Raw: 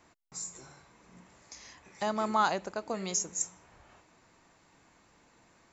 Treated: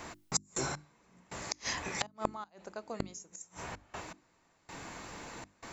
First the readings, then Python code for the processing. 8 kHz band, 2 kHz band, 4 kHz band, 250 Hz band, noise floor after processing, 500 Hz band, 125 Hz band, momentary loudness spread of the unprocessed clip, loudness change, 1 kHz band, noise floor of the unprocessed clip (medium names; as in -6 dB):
no reading, 0.0 dB, +2.0 dB, -4.5 dB, -70 dBFS, -5.5 dB, +3.0 dB, 22 LU, -7.0 dB, -8.0 dB, -65 dBFS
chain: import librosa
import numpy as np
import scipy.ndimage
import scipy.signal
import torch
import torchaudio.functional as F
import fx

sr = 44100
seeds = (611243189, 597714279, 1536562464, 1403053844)

y = fx.step_gate(x, sr, bpm=80, pattern='xx.x...xx', floor_db=-24.0, edge_ms=4.5)
y = fx.gate_flip(y, sr, shuts_db=-33.0, range_db=-34)
y = fx.hum_notches(y, sr, base_hz=50, count=7)
y = y * librosa.db_to_amplitude(17.5)